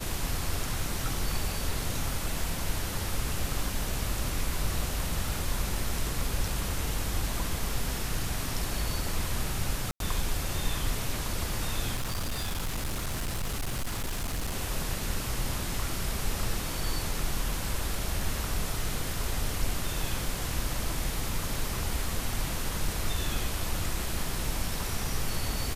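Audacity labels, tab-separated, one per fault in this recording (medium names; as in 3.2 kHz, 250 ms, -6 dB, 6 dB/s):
9.910000	10.000000	dropout 92 ms
11.950000	14.560000	clipped -27.5 dBFS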